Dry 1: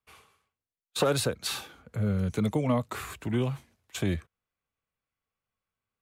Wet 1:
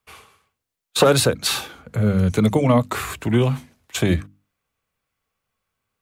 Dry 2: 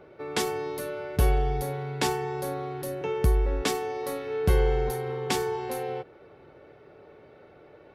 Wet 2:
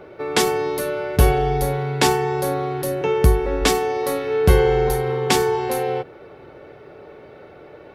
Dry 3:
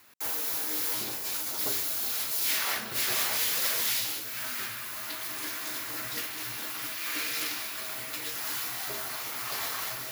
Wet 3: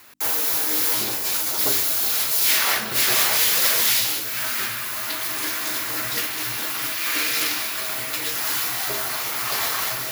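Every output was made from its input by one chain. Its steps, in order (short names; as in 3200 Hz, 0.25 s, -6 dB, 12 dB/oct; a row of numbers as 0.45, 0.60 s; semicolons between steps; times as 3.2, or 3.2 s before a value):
notches 50/100/150/200/250/300 Hz; match loudness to -20 LUFS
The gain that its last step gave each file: +10.5, +9.5, +9.5 dB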